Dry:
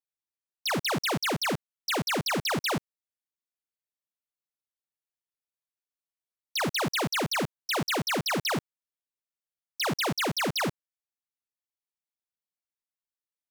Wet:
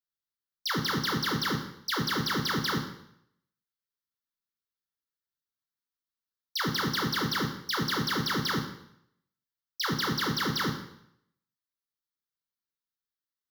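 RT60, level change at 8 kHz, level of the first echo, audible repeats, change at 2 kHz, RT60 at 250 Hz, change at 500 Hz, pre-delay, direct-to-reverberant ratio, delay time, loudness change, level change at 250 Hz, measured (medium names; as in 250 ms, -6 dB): 0.75 s, -4.0 dB, no echo, no echo, -1.0 dB, 0.70 s, -5.5 dB, 5 ms, 2.0 dB, no echo, -1.0 dB, +0.5 dB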